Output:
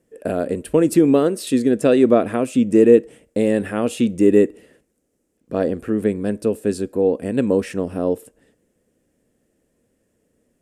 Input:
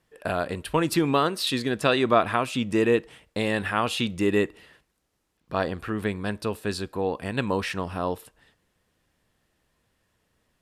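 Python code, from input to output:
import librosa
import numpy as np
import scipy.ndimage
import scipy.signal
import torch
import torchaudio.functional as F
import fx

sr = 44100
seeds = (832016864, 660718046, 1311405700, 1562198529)

y = fx.graphic_eq(x, sr, hz=(250, 500, 1000, 4000, 8000), db=(11, 11, -9, -9, 8))
y = y * 10.0 ** (-1.0 / 20.0)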